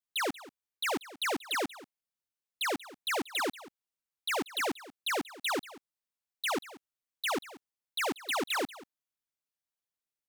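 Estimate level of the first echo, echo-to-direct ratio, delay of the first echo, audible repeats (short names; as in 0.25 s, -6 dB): -18.0 dB, -18.0 dB, 0.185 s, 1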